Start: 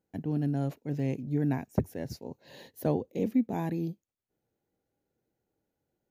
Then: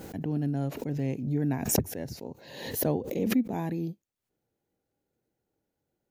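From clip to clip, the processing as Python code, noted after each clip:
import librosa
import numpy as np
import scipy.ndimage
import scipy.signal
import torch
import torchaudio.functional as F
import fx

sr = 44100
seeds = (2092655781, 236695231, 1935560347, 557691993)

y = fx.pre_swell(x, sr, db_per_s=60.0)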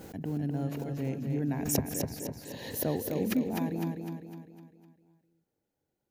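y = fx.echo_feedback(x, sr, ms=253, feedback_pct=47, wet_db=-5)
y = y * 10.0 ** (-3.5 / 20.0)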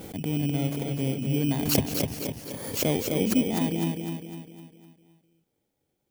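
y = fx.bit_reversed(x, sr, seeds[0], block=16)
y = y * 10.0 ** (5.5 / 20.0)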